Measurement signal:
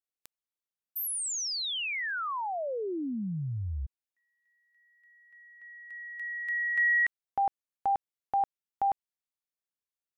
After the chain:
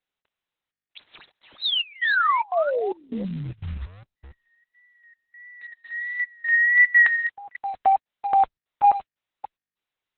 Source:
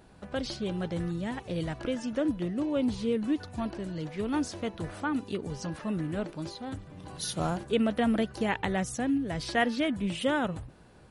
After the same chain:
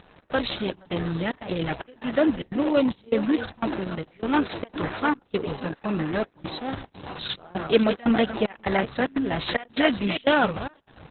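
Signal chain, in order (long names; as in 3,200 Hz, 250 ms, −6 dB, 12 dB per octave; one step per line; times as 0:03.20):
delay that plays each chunk backwards 270 ms, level −11.5 dB
high shelf with overshoot 6,900 Hz +10.5 dB, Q 1.5
in parallel at −7 dB: bit reduction 8 bits
on the sum: gate pattern "xx.xxxx..xx" 149 BPM −24 dB
pitch vibrato 1.5 Hz 46 cents
mid-hump overdrive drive 9 dB, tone 7,600 Hz, clips at −10 dBFS
level +4.5 dB
Opus 6 kbit/s 48,000 Hz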